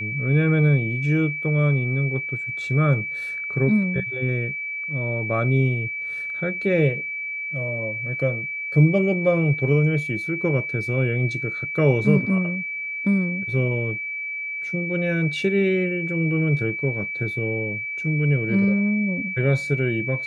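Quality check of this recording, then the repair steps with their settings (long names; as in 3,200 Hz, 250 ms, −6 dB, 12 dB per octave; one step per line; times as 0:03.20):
whistle 2,300 Hz −27 dBFS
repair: notch filter 2,300 Hz, Q 30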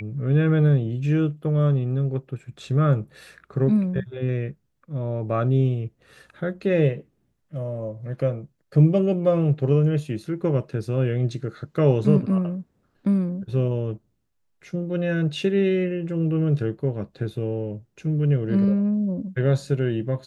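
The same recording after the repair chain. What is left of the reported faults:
none of them is left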